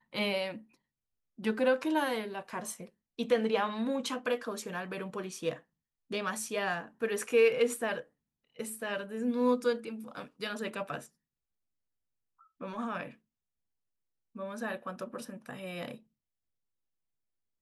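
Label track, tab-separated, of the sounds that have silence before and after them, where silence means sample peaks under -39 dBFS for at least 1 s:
12.610000	13.080000	sound
14.360000	15.940000	sound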